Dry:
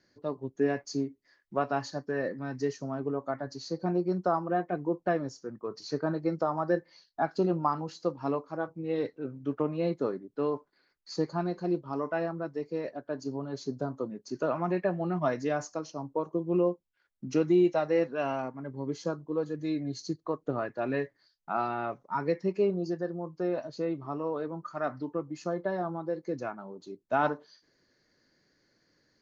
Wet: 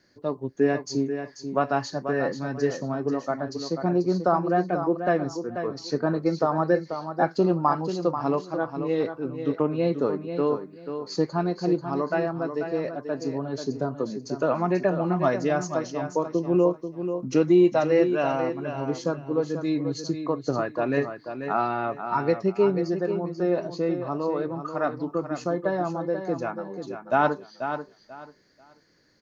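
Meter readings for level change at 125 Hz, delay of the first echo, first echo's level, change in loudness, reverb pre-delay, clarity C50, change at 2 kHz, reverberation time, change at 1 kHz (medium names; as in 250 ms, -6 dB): +6.0 dB, 488 ms, -8.5 dB, +6.0 dB, no reverb, no reverb, +6.0 dB, no reverb, +6.0 dB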